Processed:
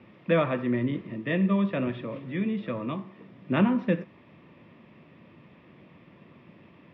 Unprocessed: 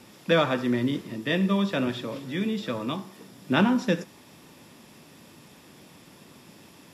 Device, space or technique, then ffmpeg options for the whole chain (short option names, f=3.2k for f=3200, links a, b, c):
bass cabinet: -af "highpass=61,equalizer=f=270:t=q:w=4:g=-4,equalizer=f=430:t=q:w=4:g=-4,equalizer=f=820:t=q:w=4:g=-9,equalizer=f=1.5k:t=q:w=4:g=-9,lowpass=f=2.4k:w=0.5412,lowpass=f=2.4k:w=1.3066,volume=1dB"